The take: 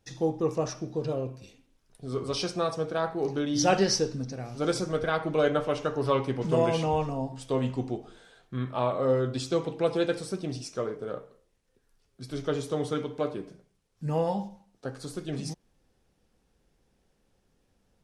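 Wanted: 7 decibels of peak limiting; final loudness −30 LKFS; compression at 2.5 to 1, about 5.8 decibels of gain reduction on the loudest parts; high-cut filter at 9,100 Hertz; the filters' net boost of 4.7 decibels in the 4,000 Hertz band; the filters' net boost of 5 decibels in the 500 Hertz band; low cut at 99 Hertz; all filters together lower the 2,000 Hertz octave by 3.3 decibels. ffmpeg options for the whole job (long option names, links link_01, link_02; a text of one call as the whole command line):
ffmpeg -i in.wav -af "highpass=99,lowpass=9100,equalizer=frequency=500:width_type=o:gain=6,equalizer=frequency=2000:width_type=o:gain=-7.5,equalizer=frequency=4000:width_type=o:gain=8.5,acompressor=threshold=-24dB:ratio=2.5,volume=2dB,alimiter=limit=-19dB:level=0:latency=1" out.wav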